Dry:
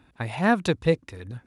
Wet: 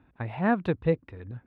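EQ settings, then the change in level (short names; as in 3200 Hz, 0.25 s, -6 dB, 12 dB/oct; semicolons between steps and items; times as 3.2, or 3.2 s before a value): air absorption 500 m; -2.0 dB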